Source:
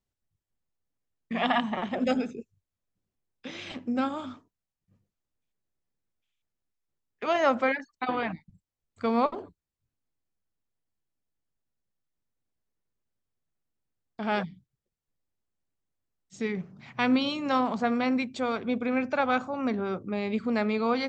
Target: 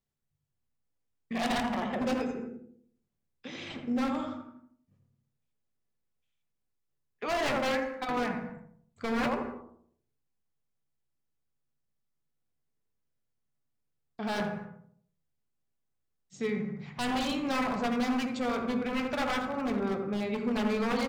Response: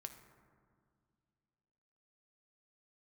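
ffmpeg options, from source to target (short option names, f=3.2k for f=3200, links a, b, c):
-filter_complex "[0:a]asplit=2[a][b];[b]adelay=82,lowpass=f=1.1k:p=1,volume=-4dB,asplit=2[c][d];[d]adelay=82,lowpass=f=1.1k:p=1,volume=0.45,asplit=2[e][f];[f]adelay=82,lowpass=f=1.1k:p=1,volume=0.45,asplit=2[g][h];[h]adelay=82,lowpass=f=1.1k:p=1,volume=0.45,asplit=2[i][j];[j]adelay=82,lowpass=f=1.1k:p=1,volume=0.45,asplit=2[k][l];[l]adelay=82,lowpass=f=1.1k:p=1,volume=0.45[m];[a][c][e][g][i][k][m]amix=inputs=7:normalize=0,aeval=exprs='0.0794*(abs(mod(val(0)/0.0794+3,4)-2)-1)':c=same[n];[1:a]atrim=start_sample=2205,afade=t=out:st=0.36:d=0.01,atrim=end_sample=16317,asetrate=48510,aresample=44100[o];[n][o]afir=irnorm=-1:irlink=0,volume=4dB"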